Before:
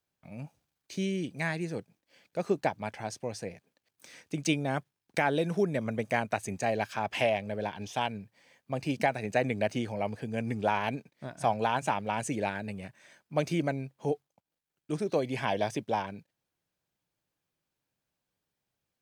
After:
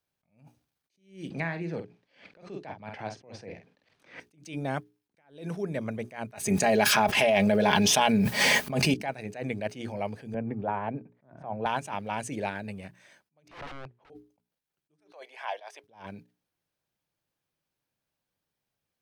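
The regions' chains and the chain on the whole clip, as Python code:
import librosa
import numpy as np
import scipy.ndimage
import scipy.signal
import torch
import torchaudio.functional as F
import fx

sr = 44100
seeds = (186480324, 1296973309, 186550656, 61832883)

y = fx.chain(x, sr, fx.lowpass(hz=3900.0, slope=12),
    fx.doubler(ms=48.0, db=-10.0),
    fx.band_squash(depth_pct=100), at=(1.3, 4.2))
y = fx.chain(y, sr, fx.high_shelf(hz=7000.0, db=5.5),
    fx.comb(ms=4.8, depth=0.52),
    fx.env_flatten(amount_pct=100), at=(6.33, 8.94))
y = fx.chain(y, sr, fx.lowpass(hz=1200.0, slope=12),
    fx.band_squash(depth_pct=40), at=(10.34, 11.66))
y = fx.chain(y, sr, fx.overflow_wrap(gain_db=32.5),
    fx.lowpass(hz=2300.0, slope=12),
    fx.peak_eq(hz=200.0, db=-8.5, octaves=0.79), at=(13.48, 14.1))
y = fx.chain(y, sr, fx.highpass(hz=660.0, slope=24),
    fx.high_shelf(hz=3400.0, db=-10.0), at=(15.0, 15.84))
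y = fx.peak_eq(y, sr, hz=7300.0, db=-3.5, octaves=0.3)
y = fx.hum_notches(y, sr, base_hz=60, count=7)
y = fx.attack_slew(y, sr, db_per_s=140.0)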